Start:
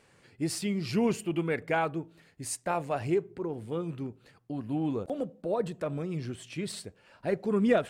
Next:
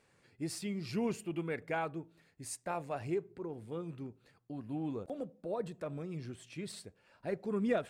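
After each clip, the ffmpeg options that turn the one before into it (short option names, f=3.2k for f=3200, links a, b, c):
-af "bandreject=f=3k:w=20,volume=-7.5dB"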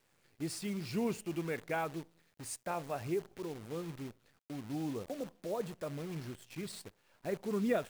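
-af "acrusher=bits=9:dc=4:mix=0:aa=0.000001"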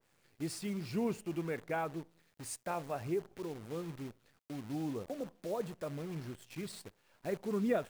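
-af "adynamicequalizer=threshold=0.002:dfrequency=1900:dqfactor=0.7:tfrequency=1900:tqfactor=0.7:attack=5:release=100:ratio=0.375:range=3:mode=cutabove:tftype=highshelf"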